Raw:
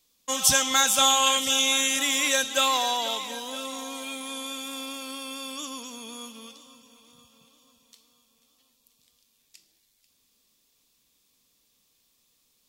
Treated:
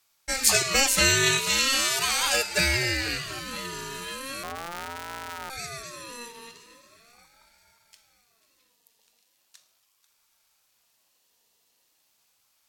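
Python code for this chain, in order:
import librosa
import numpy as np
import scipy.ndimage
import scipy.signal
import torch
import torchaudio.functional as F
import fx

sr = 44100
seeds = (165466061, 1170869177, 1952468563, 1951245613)

y = fx.sample_sort(x, sr, block=256, at=(4.43, 5.5))
y = fx.ring_lfo(y, sr, carrier_hz=920.0, swing_pct=25, hz=0.39)
y = F.gain(torch.from_numpy(y), 2.5).numpy()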